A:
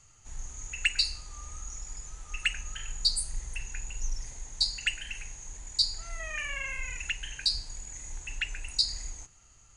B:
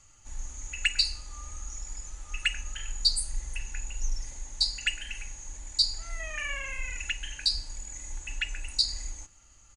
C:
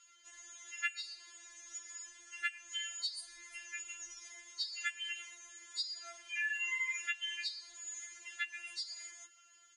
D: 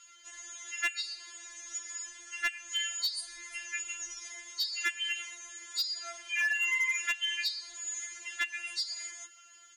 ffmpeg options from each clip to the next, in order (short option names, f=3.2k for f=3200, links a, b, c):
-af "aecho=1:1:3.5:0.4"
-af "bandpass=f=2.4k:t=q:w=0.87:csg=0,acompressor=threshold=-35dB:ratio=8,afftfilt=real='re*4*eq(mod(b,16),0)':imag='im*4*eq(mod(b,16),0)':win_size=2048:overlap=0.75,volume=4dB"
-af "asoftclip=type=hard:threshold=-32.5dB,volume=7.5dB"